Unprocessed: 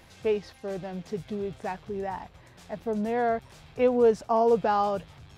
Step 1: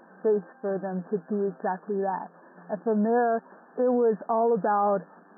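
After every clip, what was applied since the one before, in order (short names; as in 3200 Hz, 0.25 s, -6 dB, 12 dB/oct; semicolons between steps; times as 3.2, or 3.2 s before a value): FFT band-pass 170–1800 Hz; limiter -21.5 dBFS, peak gain reduction 9 dB; gain +5 dB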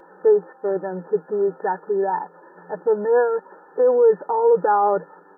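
comb 2.2 ms, depth 93%; gain +3 dB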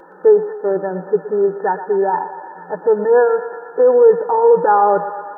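thinning echo 0.119 s, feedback 79%, high-pass 480 Hz, level -11 dB; gain +5 dB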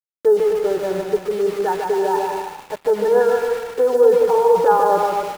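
flange 1.1 Hz, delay 1.9 ms, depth 1.9 ms, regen -70%; sample gate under -30.5 dBFS; bouncing-ball echo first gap 0.15 s, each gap 0.7×, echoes 5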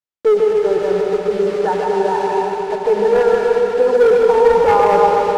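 air absorption 72 m; hard clip -11 dBFS, distortion -16 dB; reverb RT60 5.2 s, pre-delay 77 ms, DRR 2.5 dB; gain +2.5 dB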